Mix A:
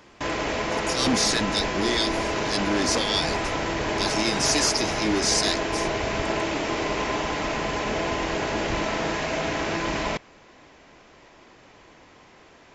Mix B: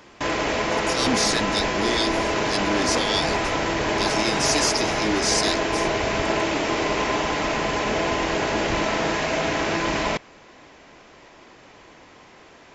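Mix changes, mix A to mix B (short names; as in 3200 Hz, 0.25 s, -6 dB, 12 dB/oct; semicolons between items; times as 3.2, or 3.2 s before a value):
background +3.5 dB; master: add low shelf 130 Hz -3.5 dB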